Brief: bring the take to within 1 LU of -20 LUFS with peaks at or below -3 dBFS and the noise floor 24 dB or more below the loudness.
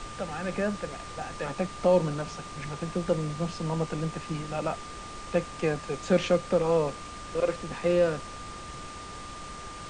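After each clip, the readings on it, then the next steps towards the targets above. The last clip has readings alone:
steady tone 1.2 kHz; tone level -42 dBFS; noise floor -41 dBFS; noise floor target -54 dBFS; loudness -29.5 LUFS; peak level -11.5 dBFS; loudness target -20.0 LUFS
-> band-stop 1.2 kHz, Q 30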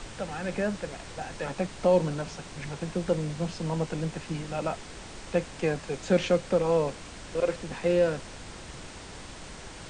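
steady tone not found; noise floor -44 dBFS; noise floor target -54 dBFS
-> noise print and reduce 10 dB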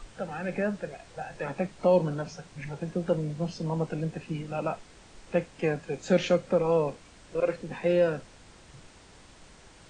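noise floor -54 dBFS; loudness -29.5 LUFS; peak level -11.5 dBFS; loudness target -20.0 LUFS
-> trim +9.5 dB; peak limiter -3 dBFS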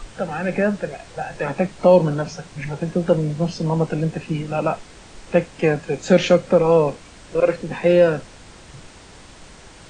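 loudness -20.0 LUFS; peak level -3.0 dBFS; noise floor -44 dBFS

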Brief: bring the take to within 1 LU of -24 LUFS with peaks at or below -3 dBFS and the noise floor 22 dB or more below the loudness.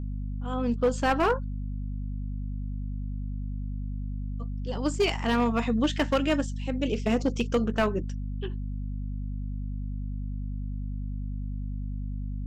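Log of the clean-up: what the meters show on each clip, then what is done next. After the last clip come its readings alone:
clipped samples 0.6%; clipping level -17.5 dBFS; hum 50 Hz; highest harmonic 250 Hz; hum level -30 dBFS; loudness -30.0 LUFS; peak level -17.5 dBFS; loudness target -24.0 LUFS
-> clip repair -17.5 dBFS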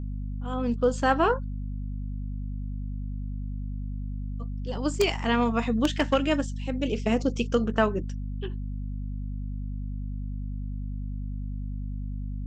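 clipped samples 0.0%; hum 50 Hz; highest harmonic 250 Hz; hum level -30 dBFS
-> de-hum 50 Hz, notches 5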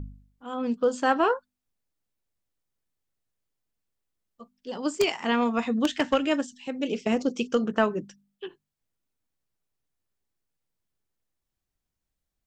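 hum not found; loudness -26.5 LUFS; peak level -8.0 dBFS; loudness target -24.0 LUFS
-> trim +2.5 dB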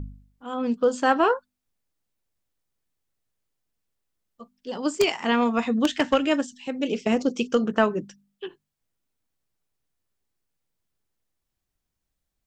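loudness -24.0 LUFS; peak level -5.5 dBFS; noise floor -82 dBFS

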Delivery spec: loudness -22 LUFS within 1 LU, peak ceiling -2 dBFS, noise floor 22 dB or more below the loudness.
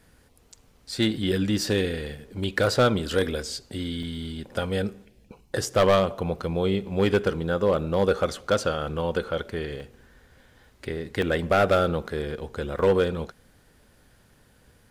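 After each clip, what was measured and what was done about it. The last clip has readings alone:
clipped samples 0.4%; clipping level -13.0 dBFS; dropouts 4; longest dropout 2.5 ms; loudness -25.5 LUFS; peak level -13.0 dBFS; loudness target -22.0 LUFS
-> clip repair -13 dBFS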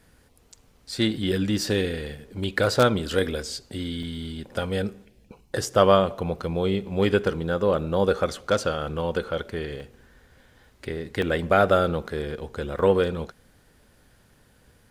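clipped samples 0.0%; dropouts 4; longest dropout 2.5 ms
-> interpolate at 4.03/9.80/11.22/12.79 s, 2.5 ms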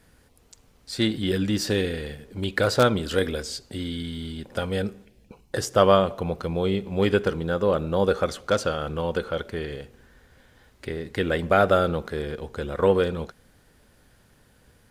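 dropouts 0; loudness -25.0 LUFS; peak level -4.0 dBFS; loudness target -22.0 LUFS
-> trim +3 dB; peak limiter -2 dBFS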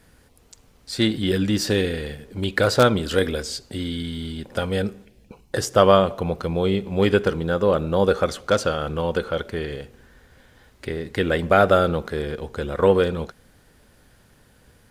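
loudness -22.0 LUFS; peak level -2.0 dBFS; noise floor -56 dBFS

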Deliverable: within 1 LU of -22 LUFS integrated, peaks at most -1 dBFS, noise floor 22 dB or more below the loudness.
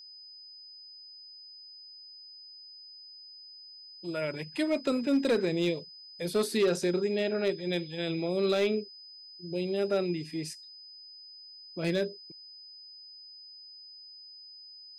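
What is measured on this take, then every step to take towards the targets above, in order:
clipped samples 0.4%; clipping level -20.0 dBFS; steady tone 5 kHz; tone level -47 dBFS; loudness -30.5 LUFS; peak level -20.0 dBFS; loudness target -22.0 LUFS
-> clip repair -20 dBFS; band-stop 5 kHz, Q 30; trim +8.5 dB

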